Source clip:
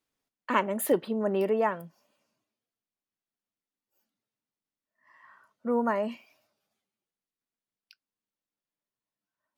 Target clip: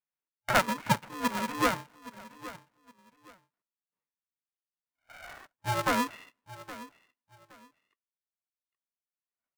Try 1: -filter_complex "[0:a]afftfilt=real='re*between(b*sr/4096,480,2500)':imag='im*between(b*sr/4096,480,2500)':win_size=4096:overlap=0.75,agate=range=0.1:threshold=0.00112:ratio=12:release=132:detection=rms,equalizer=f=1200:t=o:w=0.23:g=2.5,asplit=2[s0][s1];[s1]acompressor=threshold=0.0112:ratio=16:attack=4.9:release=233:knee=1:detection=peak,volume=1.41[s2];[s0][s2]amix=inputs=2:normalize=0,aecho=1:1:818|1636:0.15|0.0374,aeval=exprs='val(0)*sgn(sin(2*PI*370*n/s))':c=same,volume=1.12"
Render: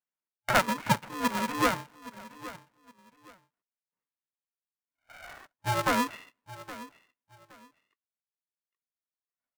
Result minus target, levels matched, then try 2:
compression: peak gain reduction -8.5 dB
-filter_complex "[0:a]afftfilt=real='re*between(b*sr/4096,480,2500)':imag='im*between(b*sr/4096,480,2500)':win_size=4096:overlap=0.75,agate=range=0.1:threshold=0.00112:ratio=12:release=132:detection=rms,equalizer=f=1200:t=o:w=0.23:g=2.5,asplit=2[s0][s1];[s1]acompressor=threshold=0.00398:ratio=16:attack=4.9:release=233:knee=1:detection=peak,volume=1.41[s2];[s0][s2]amix=inputs=2:normalize=0,aecho=1:1:818|1636:0.15|0.0374,aeval=exprs='val(0)*sgn(sin(2*PI*370*n/s))':c=same,volume=1.12"

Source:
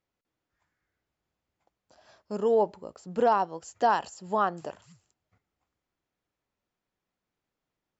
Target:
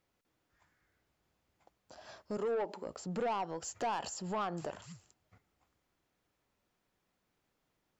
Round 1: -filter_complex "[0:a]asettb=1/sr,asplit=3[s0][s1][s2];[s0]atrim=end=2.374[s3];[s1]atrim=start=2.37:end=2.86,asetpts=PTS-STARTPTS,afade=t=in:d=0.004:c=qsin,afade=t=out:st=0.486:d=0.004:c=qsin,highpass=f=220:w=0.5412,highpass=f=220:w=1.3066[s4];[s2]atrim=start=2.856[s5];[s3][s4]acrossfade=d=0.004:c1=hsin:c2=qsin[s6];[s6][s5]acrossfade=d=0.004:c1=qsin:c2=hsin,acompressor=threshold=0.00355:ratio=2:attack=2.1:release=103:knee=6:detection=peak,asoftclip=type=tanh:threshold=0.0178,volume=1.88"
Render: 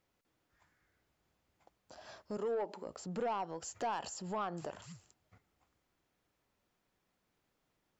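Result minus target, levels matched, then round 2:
compression: peak gain reduction +3 dB
-filter_complex "[0:a]asettb=1/sr,asplit=3[s0][s1][s2];[s0]atrim=end=2.374[s3];[s1]atrim=start=2.37:end=2.86,asetpts=PTS-STARTPTS,afade=t=in:d=0.004:c=qsin,afade=t=out:st=0.486:d=0.004:c=qsin,highpass=f=220:w=0.5412,highpass=f=220:w=1.3066[s4];[s2]atrim=start=2.856[s5];[s3][s4]acrossfade=d=0.004:c1=hsin:c2=qsin[s6];[s6][s5]acrossfade=d=0.004:c1=qsin:c2=hsin,acompressor=threshold=0.0075:ratio=2:attack=2.1:release=103:knee=6:detection=peak,asoftclip=type=tanh:threshold=0.0178,volume=1.88"

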